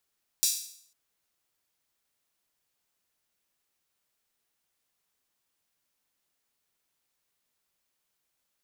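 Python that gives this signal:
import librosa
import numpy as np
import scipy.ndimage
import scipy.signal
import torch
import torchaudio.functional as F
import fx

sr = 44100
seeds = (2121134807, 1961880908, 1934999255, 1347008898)

y = fx.drum_hat_open(sr, length_s=0.5, from_hz=5100.0, decay_s=0.61)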